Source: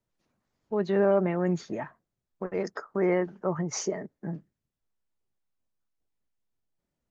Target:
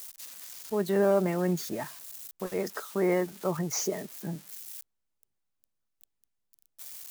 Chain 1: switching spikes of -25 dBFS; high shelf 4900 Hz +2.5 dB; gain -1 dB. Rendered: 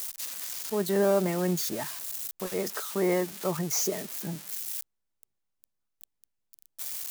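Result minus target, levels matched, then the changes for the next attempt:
switching spikes: distortion +8 dB
change: switching spikes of -33 dBFS

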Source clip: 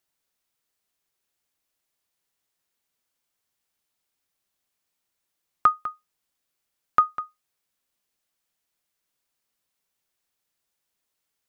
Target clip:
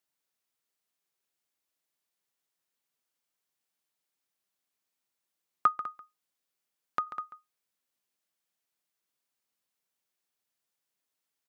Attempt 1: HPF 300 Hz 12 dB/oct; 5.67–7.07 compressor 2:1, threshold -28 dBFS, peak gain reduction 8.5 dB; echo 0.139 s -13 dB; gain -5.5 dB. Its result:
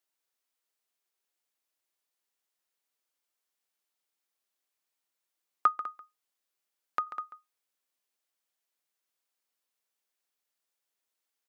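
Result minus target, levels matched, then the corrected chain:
125 Hz band -10.5 dB
HPF 120 Hz 12 dB/oct; 5.67–7.07 compressor 2:1, threshold -28 dBFS, peak gain reduction 8.5 dB; echo 0.139 s -13 dB; gain -5.5 dB

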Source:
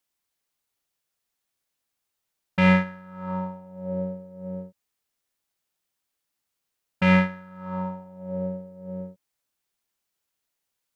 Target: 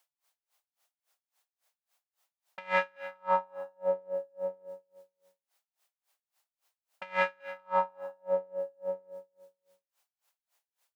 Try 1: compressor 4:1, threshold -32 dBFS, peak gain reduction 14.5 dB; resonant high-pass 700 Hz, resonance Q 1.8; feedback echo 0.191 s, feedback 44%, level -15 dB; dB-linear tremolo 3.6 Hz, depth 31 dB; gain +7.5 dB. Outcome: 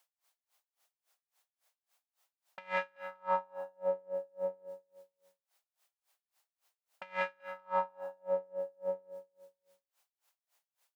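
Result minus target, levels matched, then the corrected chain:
compressor: peak gain reduction +6.5 dB
compressor 4:1, threshold -23.5 dBFS, peak gain reduction 8 dB; resonant high-pass 700 Hz, resonance Q 1.8; feedback echo 0.191 s, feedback 44%, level -15 dB; dB-linear tremolo 3.6 Hz, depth 31 dB; gain +7.5 dB

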